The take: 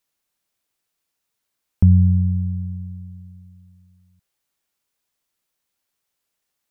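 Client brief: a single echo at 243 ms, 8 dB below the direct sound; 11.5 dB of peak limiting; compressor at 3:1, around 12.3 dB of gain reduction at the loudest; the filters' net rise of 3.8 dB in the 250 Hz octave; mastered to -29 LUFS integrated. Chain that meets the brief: peaking EQ 250 Hz +7 dB; compression 3:1, threshold -24 dBFS; peak limiter -21 dBFS; delay 243 ms -8 dB; trim -1 dB

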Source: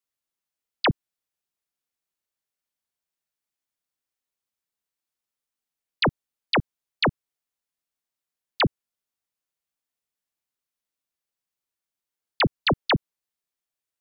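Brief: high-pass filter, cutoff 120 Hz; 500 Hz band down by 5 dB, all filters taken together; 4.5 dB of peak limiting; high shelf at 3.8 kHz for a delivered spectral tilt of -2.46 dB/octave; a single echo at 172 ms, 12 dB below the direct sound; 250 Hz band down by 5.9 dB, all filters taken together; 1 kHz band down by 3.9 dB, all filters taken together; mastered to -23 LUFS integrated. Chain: high-pass 120 Hz; peaking EQ 250 Hz -6.5 dB; peaking EQ 500 Hz -3.5 dB; peaking EQ 1 kHz -4 dB; treble shelf 3.8 kHz +3.5 dB; peak limiter -18.5 dBFS; delay 172 ms -12 dB; trim +6.5 dB

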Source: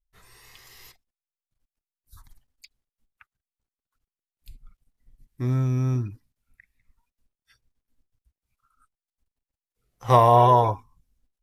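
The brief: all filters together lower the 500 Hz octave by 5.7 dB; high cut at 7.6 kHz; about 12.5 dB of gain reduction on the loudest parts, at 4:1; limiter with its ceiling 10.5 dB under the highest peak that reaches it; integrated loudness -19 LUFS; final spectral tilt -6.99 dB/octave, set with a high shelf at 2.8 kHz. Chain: low-pass 7.6 kHz; peaking EQ 500 Hz -7.5 dB; treble shelf 2.8 kHz -4 dB; compression 4:1, threshold -30 dBFS; trim +21.5 dB; peak limiter -8.5 dBFS

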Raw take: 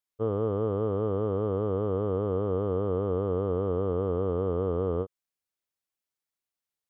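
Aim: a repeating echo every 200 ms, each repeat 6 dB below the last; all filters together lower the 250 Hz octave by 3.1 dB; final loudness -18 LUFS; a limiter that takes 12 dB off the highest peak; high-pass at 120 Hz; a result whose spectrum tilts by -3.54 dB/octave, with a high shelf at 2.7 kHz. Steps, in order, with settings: high-pass 120 Hz; peaking EQ 250 Hz -4 dB; treble shelf 2.7 kHz -6 dB; peak limiter -31 dBFS; feedback delay 200 ms, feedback 50%, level -6 dB; trim +22 dB

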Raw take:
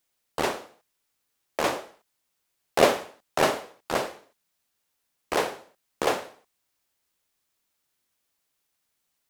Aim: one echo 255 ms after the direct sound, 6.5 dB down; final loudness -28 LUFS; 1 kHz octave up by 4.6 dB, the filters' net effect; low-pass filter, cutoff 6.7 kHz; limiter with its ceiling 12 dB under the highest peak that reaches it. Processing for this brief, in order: low-pass 6.7 kHz; peaking EQ 1 kHz +6 dB; peak limiter -15 dBFS; delay 255 ms -6.5 dB; trim +2.5 dB

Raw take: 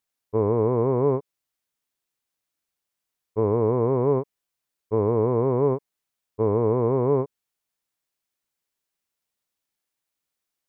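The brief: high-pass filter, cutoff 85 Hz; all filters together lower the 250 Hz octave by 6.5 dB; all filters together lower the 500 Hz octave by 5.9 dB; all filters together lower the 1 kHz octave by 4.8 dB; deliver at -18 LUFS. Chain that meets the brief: high-pass 85 Hz; peaking EQ 250 Hz -7 dB; peaking EQ 500 Hz -4 dB; peaking EQ 1 kHz -4 dB; trim +10.5 dB

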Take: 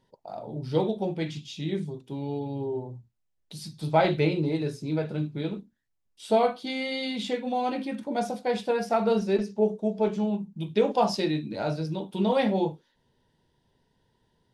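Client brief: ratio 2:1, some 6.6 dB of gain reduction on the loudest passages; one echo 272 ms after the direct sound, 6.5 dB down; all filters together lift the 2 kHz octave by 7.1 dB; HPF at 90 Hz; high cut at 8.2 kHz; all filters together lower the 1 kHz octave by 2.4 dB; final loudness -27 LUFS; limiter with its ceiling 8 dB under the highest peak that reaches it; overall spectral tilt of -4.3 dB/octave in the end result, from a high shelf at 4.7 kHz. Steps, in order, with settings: high-pass 90 Hz; low-pass 8.2 kHz; peaking EQ 1 kHz -5.5 dB; peaking EQ 2 kHz +8 dB; treble shelf 4.7 kHz +8.5 dB; compression 2:1, threshold -30 dBFS; peak limiter -23 dBFS; delay 272 ms -6.5 dB; trim +6 dB

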